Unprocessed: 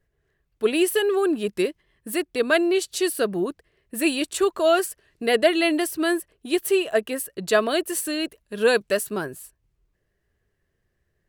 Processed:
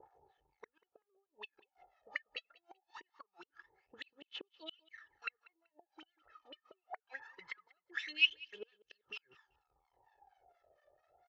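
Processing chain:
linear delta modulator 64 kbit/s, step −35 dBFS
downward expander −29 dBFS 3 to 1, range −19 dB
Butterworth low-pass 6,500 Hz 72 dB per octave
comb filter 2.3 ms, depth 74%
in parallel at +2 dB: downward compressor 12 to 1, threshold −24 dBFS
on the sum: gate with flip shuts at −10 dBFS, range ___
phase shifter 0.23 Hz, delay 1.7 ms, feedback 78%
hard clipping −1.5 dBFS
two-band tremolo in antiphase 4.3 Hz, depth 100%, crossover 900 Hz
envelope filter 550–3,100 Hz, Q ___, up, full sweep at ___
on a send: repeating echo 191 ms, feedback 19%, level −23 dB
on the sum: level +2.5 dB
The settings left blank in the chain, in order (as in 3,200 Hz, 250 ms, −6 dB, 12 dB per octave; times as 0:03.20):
−41 dB, 9.4, −26 dBFS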